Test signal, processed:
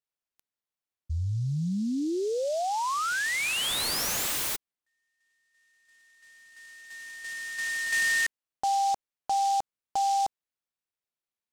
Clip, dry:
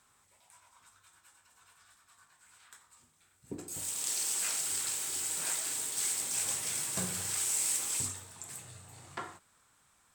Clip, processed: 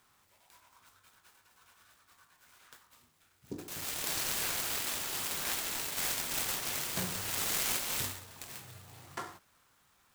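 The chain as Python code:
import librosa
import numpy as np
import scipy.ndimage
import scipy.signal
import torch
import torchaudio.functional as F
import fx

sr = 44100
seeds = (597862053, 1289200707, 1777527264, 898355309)

y = fx.noise_mod_delay(x, sr, seeds[0], noise_hz=5300.0, depth_ms=0.034)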